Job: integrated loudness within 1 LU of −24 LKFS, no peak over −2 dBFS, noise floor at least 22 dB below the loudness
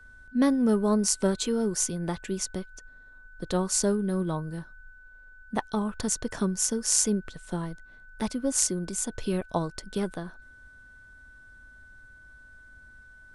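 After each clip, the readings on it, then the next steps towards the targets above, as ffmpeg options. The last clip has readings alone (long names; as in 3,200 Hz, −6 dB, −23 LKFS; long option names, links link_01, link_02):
interfering tone 1,500 Hz; level of the tone −50 dBFS; integrated loudness −28.0 LKFS; sample peak −4.5 dBFS; target loudness −24.0 LKFS
→ -af "bandreject=frequency=1500:width=30"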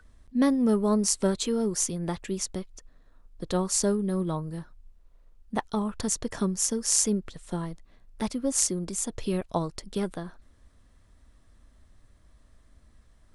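interfering tone none found; integrated loudness −28.0 LKFS; sample peak −4.5 dBFS; target loudness −24.0 LKFS
→ -af "volume=4dB,alimiter=limit=-2dB:level=0:latency=1"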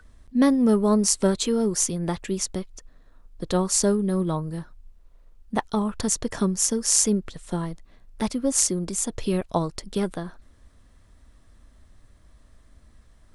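integrated loudness −24.0 LKFS; sample peak −2.0 dBFS; background noise floor −55 dBFS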